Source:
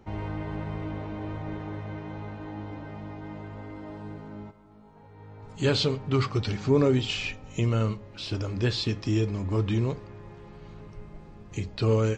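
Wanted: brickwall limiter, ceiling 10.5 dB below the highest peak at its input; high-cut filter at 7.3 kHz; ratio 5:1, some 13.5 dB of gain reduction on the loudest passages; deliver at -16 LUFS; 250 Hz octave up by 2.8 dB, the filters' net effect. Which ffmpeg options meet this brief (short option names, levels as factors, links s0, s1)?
-af "lowpass=7300,equalizer=f=250:t=o:g=3.5,acompressor=threshold=0.0282:ratio=5,volume=16.8,alimiter=limit=0.473:level=0:latency=1"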